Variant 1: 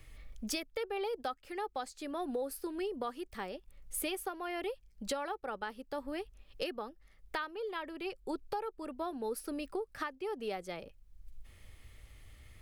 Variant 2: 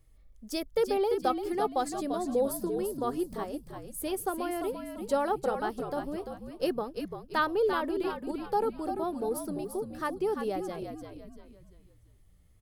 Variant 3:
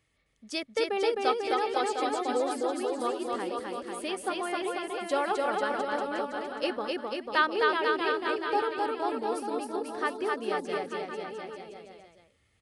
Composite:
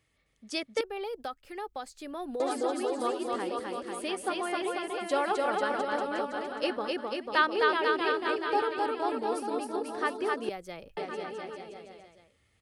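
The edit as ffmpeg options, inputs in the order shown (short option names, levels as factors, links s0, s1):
-filter_complex "[0:a]asplit=2[s0][s1];[2:a]asplit=3[s2][s3][s4];[s2]atrim=end=0.812[s5];[s0]atrim=start=0.808:end=2.402[s6];[s3]atrim=start=2.398:end=10.492[s7];[s1]atrim=start=10.488:end=10.972[s8];[s4]atrim=start=10.968[s9];[s5][s6]acrossfade=d=0.004:c1=hsin:c2=hsin[s10];[s10][s7]acrossfade=d=0.004:c1=hsin:c2=hsin[s11];[s11][s8]acrossfade=d=0.004:c1=hsin:c2=hsin[s12];[s12][s9]acrossfade=d=0.004:c1=hsin:c2=hsin"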